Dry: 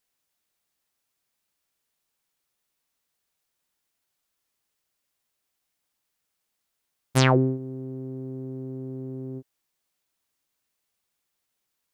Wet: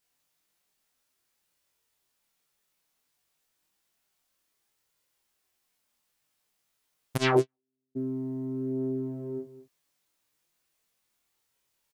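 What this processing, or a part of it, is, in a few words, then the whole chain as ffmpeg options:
double-tracked vocal: -filter_complex "[0:a]asplit=2[a][b];[b]adelay=26,volume=-3.5dB[c];[a][c]amix=inputs=2:normalize=0,flanger=delay=19:depth=5:speed=0.3,aecho=1:1:211:0.188,asplit=3[d][e][f];[d]afade=t=out:st=7.16:d=0.02[g];[e]agate=range=-57dB:threshold=-20dB:ratio=16:detection=peak,afade=t=in:st=7.16:d=0.02,afade=t=out:st=7.95:d=0.02[h];[f]afade=t=in:st=7.95:d=0.02[i];[g][h][i]amix=inputs=3:normalize=0,volume=4dB"

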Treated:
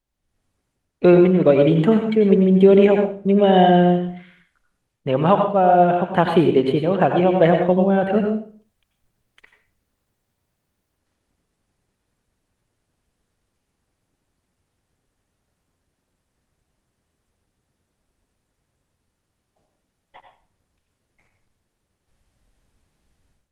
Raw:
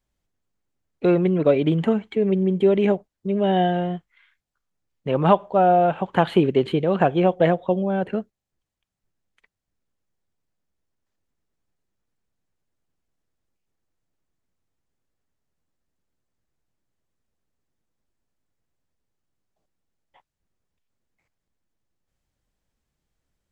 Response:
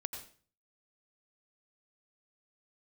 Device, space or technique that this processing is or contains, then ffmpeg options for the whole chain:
speakerphone in a meeting room: -filter_complex "[1:a]atrim=start_sample=2205[a];[0:a][a]afir=irnorm=-1:irlink=0,dynaudnorm=f=220:g=3:m=15dB,volume=-1dB" -ar 48000 -c:a libopus -b:a 32k

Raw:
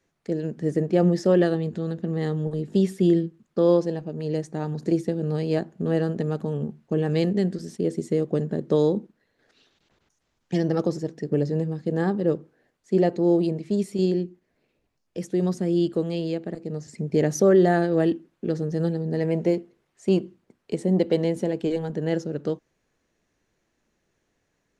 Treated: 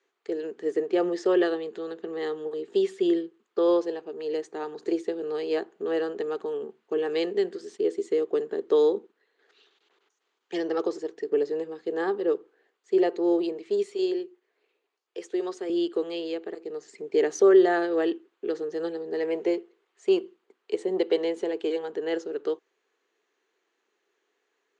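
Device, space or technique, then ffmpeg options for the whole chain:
phone speaker on a table: -filter_complex "[0:a]highpass=f=380:w=0.5412,highpass=f=380:w=1.3066,equalizer=f=410:t=q:w=4:g=7,equalizer=f=590:t=q:w=4:g=-9,equalizer=f=1.2k:t=q:w=4:g=3,equalizer=f=3.1k:t=q:w=4:g=3,equalizer=f=5.5k:t=q:w=4:g=-7,lowpass=f=7k:w=0.5412,lowpass=f=7k:w=1.3066,asettb=1/sr,asplit=3[a][b][c];[a]atrim=end=13.914[d];[b]atrim=start=13.91:end=15.7,asetpts=PTS-STARTPTS,afade=t=in:d=0.004:c=qsin,afade=t=out:st=1.786:d=0.004:c=qsin,highpass=310[e];[c]atrim=start=15.696[f];[d][e]acrossfade=d=0.004:c1=hsin:c2=qsin[g];[g][f]acrossfade=d=0.004:c1=qsin:c2=hsin"

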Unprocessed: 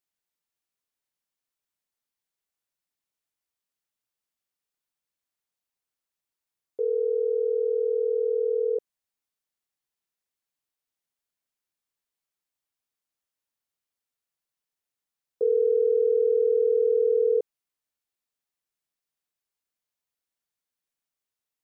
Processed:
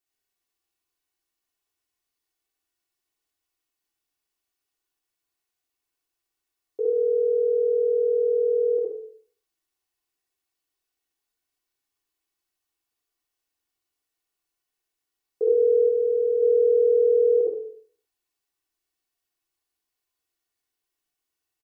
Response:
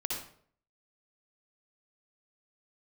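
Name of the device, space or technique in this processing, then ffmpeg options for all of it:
microphone above a desk: -filter_complex "[0:a]aecho=1:1:2.7:0.62[a];[1:a]atrim=start_sample=2205[b];[a][b]afir=irnorm=-1:irlink=0,asplit=3[c][d][e];[c]afade=t=out:st=15.88:d=0.02[f];[d]lowshelf=f=480:g=-7.5,afade=t=in:st=15.88:d=0.02,afade=t=out:st=16.41:d=0.02[g];[e]afade=t=in:st=16.41:d=0.02[h];[f][g][h]amix=inputs=3:normalize=0"

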